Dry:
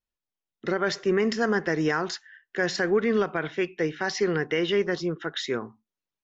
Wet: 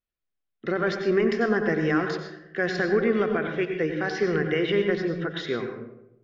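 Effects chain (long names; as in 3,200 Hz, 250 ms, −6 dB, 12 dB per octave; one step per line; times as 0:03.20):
low-pass filter 3,400 Hz 12 dB per octave
notch filter 910 Hz, Q 5.2
on a send: convolution reverb RT60 0.85 s, pre-delay 89 ms, DRR 5 dB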